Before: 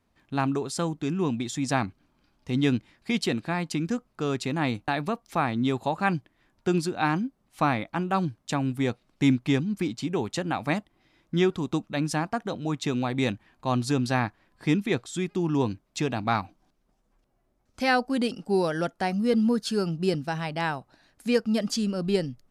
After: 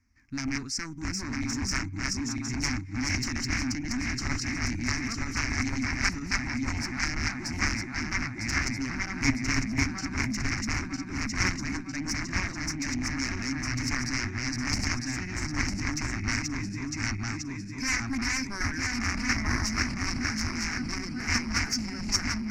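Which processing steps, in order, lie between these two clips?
regenerating reverse delay 0.477 s, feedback 73%, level -1 dB; added harmonics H 7 -8 dB, 8 -26 dB, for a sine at -7 dBFS; EQ curve 100 Hz 0 dB, 170 Hz -15 dB, 260 Hz -3 dB, 480 Hz -29 dB, 2200 Hz +1 dB, 3400 Hz -28 dB, 5500 Hz +6 dB, 8900 Hz -14 dB

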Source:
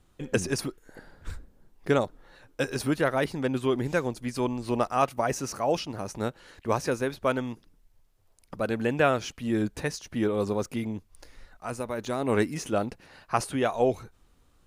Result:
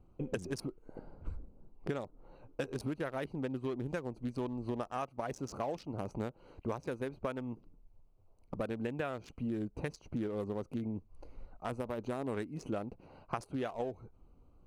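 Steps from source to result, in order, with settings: Wiener smoothing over 25 samples; compressor 12:1, threshold -35 dBFS, peak gain reduction 18 dB; gain +1.5 dB

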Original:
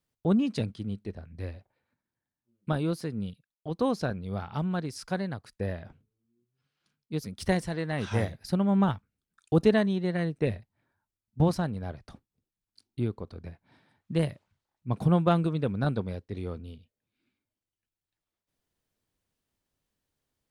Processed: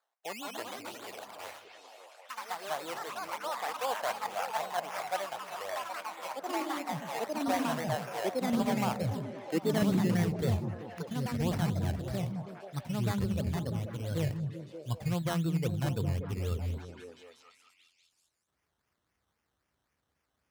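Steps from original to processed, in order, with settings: spectral noise reduction 7 dB; reverse; compressor 4:1, threshold -36 dBFS, peak gain reduction 15.5 dB; reverse; decimation with a swept rate 15×, swing 60% 3.8 Hz; delay with a stepping band-pass 0.192 s, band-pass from 160 Hz, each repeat 0.7 oct, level -2 dB; high-pass sweep 720 Hz -> 61 Hz, 8.85–10.7; echoes that change speed 0.232 s, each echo +3 st, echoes 3; mismatched tape noise reduction encoder only; gain +3.5 dB

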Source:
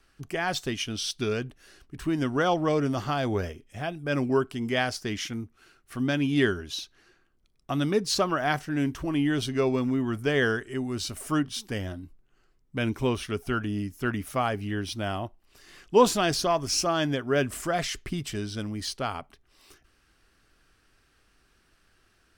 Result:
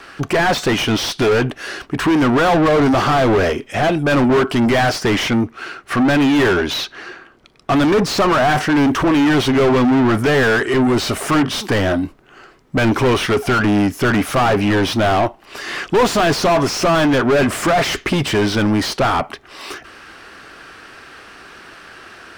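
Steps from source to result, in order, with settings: 5.16–7.75 high shelf 8200 Hz -6.5 dB; overdrive pedal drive 38 dB, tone 1500 Hz, clips at -7.5 dBFS; gain +1.5 dB

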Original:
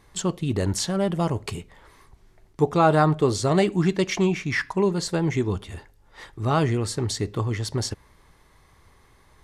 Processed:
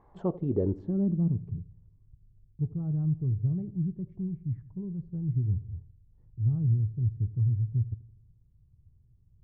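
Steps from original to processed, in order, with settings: darkening echo 82 ms, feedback 54%, low-pass 1500 Hz, level -17.5 dB; low-pass sweep 890 Hz -> 120 Hz, 0.04–1.69; dynamic EQ 620 Hz, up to -3 dB, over -41 dBFS, Q 1.8; gain -5.5 dB

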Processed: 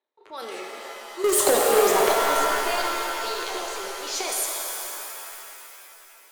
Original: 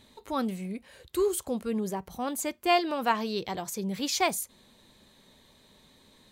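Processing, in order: elliptic high-pass 350 Hz, stop band 60 dB; low-pass opened by the level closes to 1300 Hz, open at -25.5 dBFS; gate with hold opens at -56 dBFS; bell 13000 Hz +13 dB 2.4 oct; in parallel at +2.5 dB: limiter -23 dBFS, peak gain reduction 13 dB; on the sum: transient shaper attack -8 dB, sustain +9 dB; 1.24–2.12 sample leveller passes 5; 2.76–3.24 level quantiser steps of 18 dB; tremolo 3.4 Hz, depth 47%; shimmer reverb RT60 3.1 s, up +7 st, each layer -2 dB, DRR 0 dB; gain -7 dB

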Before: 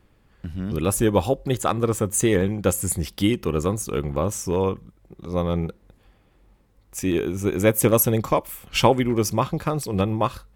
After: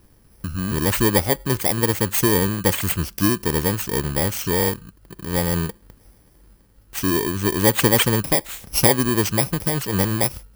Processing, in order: FFT order left unsorted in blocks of 32 samples; in parallel at -2 dB: compressor, threshold -29 dBFS, peak gain reduction 17 dB

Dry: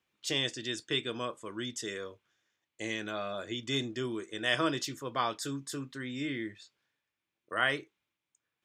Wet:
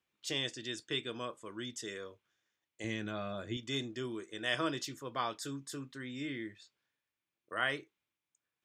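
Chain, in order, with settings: 2.84–3.57 tone controls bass +11 dB, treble -3 dB; gain -4.5 dB

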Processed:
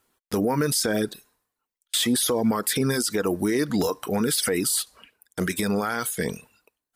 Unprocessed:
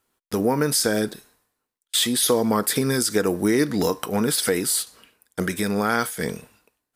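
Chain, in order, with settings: reverb removal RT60 0.62 s; limiter -17.5 dBFS, peak gain reduction 10 dB; gain +3.5 dB

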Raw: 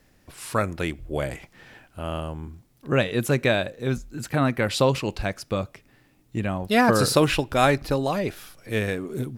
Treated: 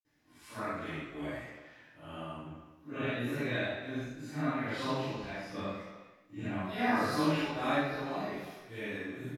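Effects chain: phase scrambler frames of 0.2 s; 5.48–6.61 sample leveller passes 1; speakerphone echo 0.31 s, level -15 dB; reverb, pre-delay 47 ms; dynamic EQ 7300 Hz, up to -6 dB, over -55 dBFS, Q 0.83

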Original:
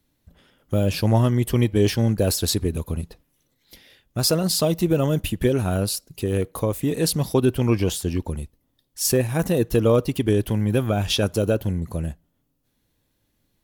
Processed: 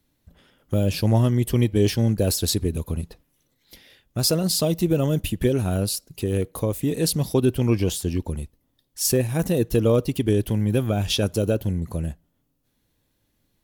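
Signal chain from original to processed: dynamic EQ 1200 Hz, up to -5 dB, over -38 dBFS, Q 0.74

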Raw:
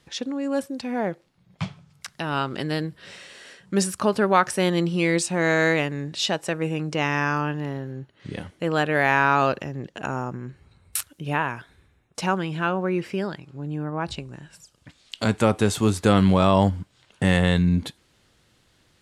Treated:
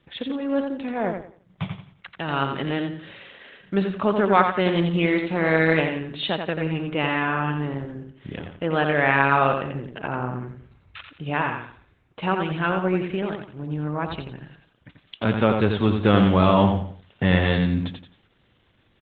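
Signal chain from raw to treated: downsampling 8000 Hz; 14.19–15.25 low-pass opened by the level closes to 2700 Hz, open at -36.5 dBFS; feedback echo 87 ms, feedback 32%, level -5.5 dB; Opus 12 kbps 48000 Hz

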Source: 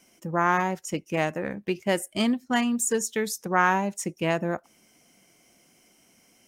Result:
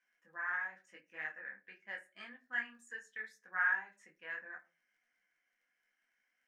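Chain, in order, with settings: band-pass 1700 Hz, Q 9.7; crackle 10/s -66 dBFS; reverb RT60 0.35 s, pre-delay 4 ms, DRR 6 dB; detuned doubles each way 28 cents; gain +1 dB

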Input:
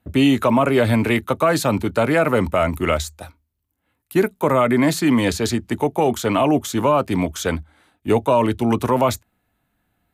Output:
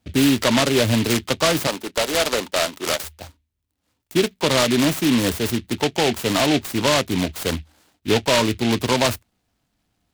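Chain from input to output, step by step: 1.67–3.04 HPF 440 Hz 12 dB/oct; noise-modulated delay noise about 2700 Hz, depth 0.15 ms; gain -1.5 dB

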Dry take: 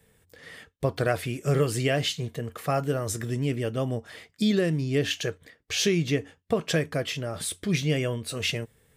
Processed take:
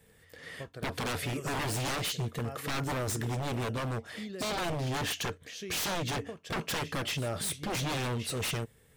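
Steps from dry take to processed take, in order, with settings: pre-echo 0.238 s -18 dB; wavefolder -27.5 dBFS

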